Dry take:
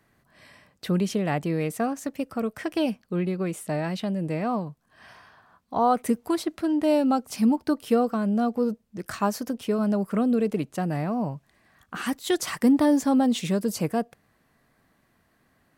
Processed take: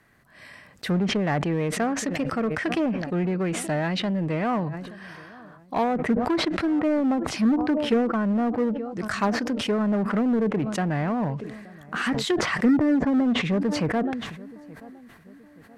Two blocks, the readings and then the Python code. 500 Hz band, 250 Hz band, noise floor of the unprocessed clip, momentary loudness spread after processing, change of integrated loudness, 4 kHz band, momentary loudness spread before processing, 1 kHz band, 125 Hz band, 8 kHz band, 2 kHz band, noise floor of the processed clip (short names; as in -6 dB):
+0.5 dB, +1.0 dB, -67 dBFS, 13 LU, +1.0 dB, +5.0 dB, 9 LU, -0.5 dB, +2.5 dB, 0.0 dB, +7.0 dB, -52 dBFS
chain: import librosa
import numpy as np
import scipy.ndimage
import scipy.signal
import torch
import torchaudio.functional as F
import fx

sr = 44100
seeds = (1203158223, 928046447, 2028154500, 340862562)

p1 = fx.echo_filtered(x, sr, ms=875, feedback_pct=47, hz=1100.0, wet_db=-22.5)
p2 = fx.env_lowpass_down(p1, sr, base_hz=520.0, full_db=-17.5)
p3 = 10.0 ** (-26.0 / 20.0) * (np.abs((p2 / 10.0 ** (-26.0 / 20.0) + 3.0) % 4.0 - 2.0) - 1.0)
p4 = p2 + (p3 * librosa.db_to_amplitude(-9.0))
p5 = fx.peak_eq(p4, sr, hz=1800.0, db=5.5, octaves=0.89)
y = fx.sustainer(p5, sr, db_per_s=46.0)